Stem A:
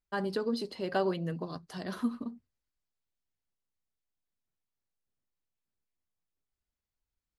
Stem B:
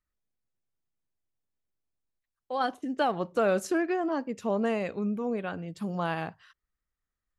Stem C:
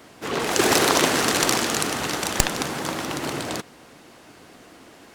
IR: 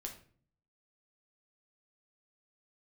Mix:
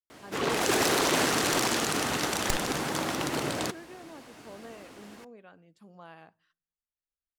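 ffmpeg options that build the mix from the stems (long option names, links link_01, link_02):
-filter_complex "[0:a]adelay=100,volume=-14.5dB[link_01];[1:a]lowshelf=frequency=130:gain=-12,volume=-18dB,asplit=2[link_02][link_03];[link_03]volume=-16.5dB[link_04];[2:a]asoftclip=type=hard:threshold=-8dB,adelay=100,volume=-3dB,asplit=2[link_05][link_06];[link_06]volume=-17dB[link_07];[3:a]atrim=start_sample=2205[link_08];[link_04][link_07]amix=inputs=2:normalize=0[link_09];[link_09][link_08]afir=irnorm=-1:irlink=0[link_10];[link_01][link_02][link_05][link_10]amix=inputs=4:normalize=0,alimiter=limit=-15.5dB:level=0:latency=1:release=27"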